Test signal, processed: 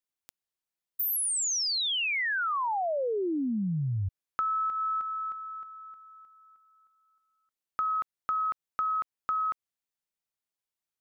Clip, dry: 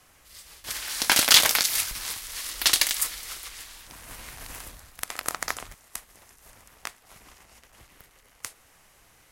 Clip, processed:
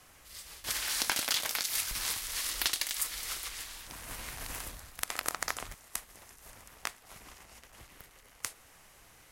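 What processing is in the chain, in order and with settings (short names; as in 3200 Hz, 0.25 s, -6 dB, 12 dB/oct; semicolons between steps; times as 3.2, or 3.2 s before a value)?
compressor 12:1, threshold -27 dBFS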